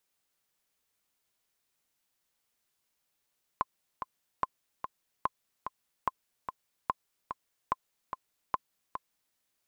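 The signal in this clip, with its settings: metronome 146 bpm, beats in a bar 2, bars 7, 1040 Hz, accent 8 dB -14 dBFS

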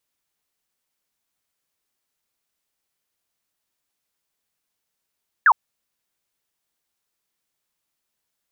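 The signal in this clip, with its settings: laser zap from 1800 Hz, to 830 Hz, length 0.06 s sine, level -9.5 dB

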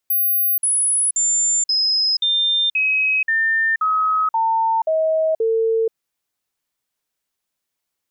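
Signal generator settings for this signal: stepped sine 14400 Hz down, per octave 2, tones 11, 0.48 s, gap 0.05 s -15 dBFS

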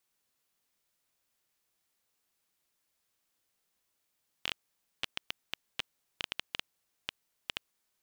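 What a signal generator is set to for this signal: random clicks 6/s -14.5 dBFS 3.36 s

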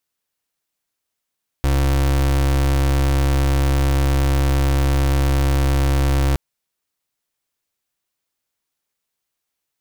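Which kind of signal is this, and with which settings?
pulse 68.7 Hz, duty 33% -16.5 dBFS 4.72 s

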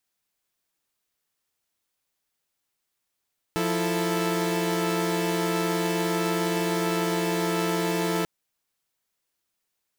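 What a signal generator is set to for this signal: chord F3/E4/A4 saw, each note -25.5 dBFS 4.69 s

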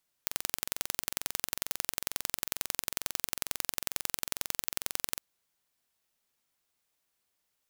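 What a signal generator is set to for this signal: pulse train 22.2/s, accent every 2, -1.5 dBFS 4.91 s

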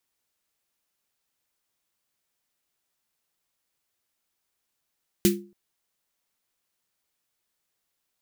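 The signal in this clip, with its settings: snare drum length 0.28 s, tones 200 Hz, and 350 Hz, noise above 1700 Hz, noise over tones -4 dB, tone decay 0.37 s, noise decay 0.19 s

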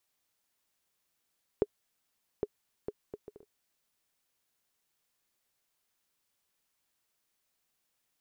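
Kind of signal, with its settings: bouncing ball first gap 0.81 s, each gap 0.56, 416 Hz, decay 43 ms -14.5 dBFS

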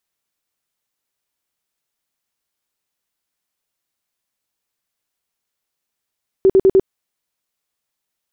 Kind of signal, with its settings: tone bursts 384 Hz, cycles 18, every 0.10 s, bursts 4, -7 dBFS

